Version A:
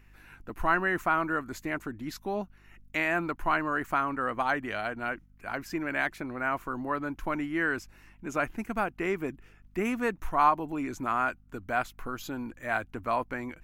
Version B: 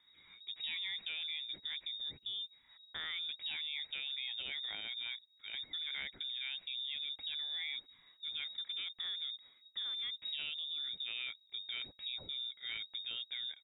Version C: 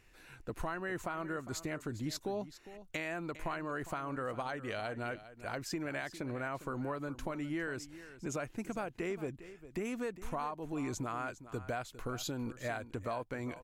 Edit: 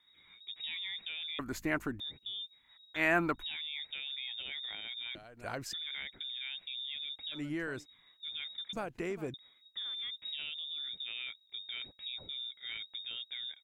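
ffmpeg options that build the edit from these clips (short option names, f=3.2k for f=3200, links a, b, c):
-filter_complex "[0:a]asplit=2[a][b];[2:a]asplit=3[c][d][e];[1:a]asplit=6[f][g][h][i][j][k];[f]atrim=end=1.392[l];[a]atrim=start=1.388:end=2.002[m];[g]atrim=start=1.998:end=3.04[n];[b]atrim=start=2.94:end=3.44[o];[h]atrim=start=3.34:end=5.152[p];[c]atrim=start=5.148:end=5.732[q];[i]atrim=start=5.728:end=7.41[r];[d]atrim=start=7.31:end=7.86[s];[j]atrim=start=7.76:end=8.732[t];[e]atrim=start=8.728:end=9.342[u];[k]atrim=start=9.338[v];[l][m]acrossfade=d=0.004:c1=hsin:c2=hsin[w];[w][n]acrossfade=d=0.004:c1=hsin:c2=hsin[x];[x][o]acrossfade=d=0.1:c1=tri:c2=tri[y];[y][p]acrossfade=d=0.1:c1=tri:c2=tri[z];[z][q]acrossfade=d=0.004:c1=hsin:c2=hsin[aa];[aa][r]acrossfade=d=0.004:c1=hsin:c2=hsin[ab];[ab][s]acrossfade=d=0.1:c1=tri:c2=tri[ac];[ac][t]acrossfade=d=0.1:c1=tri:c2=tri[ad];[ad][u]acrossfade=d=0.004:c1=hsin:c2=hsin[ae];[ae][v]acrossfade=d=0.004:c1=hsin:c2=hsin"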